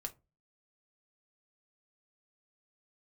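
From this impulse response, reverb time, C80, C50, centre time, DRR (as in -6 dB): 0.25 s, 28.5 dB, 19.5 dB, 5 ms, 4.0 dB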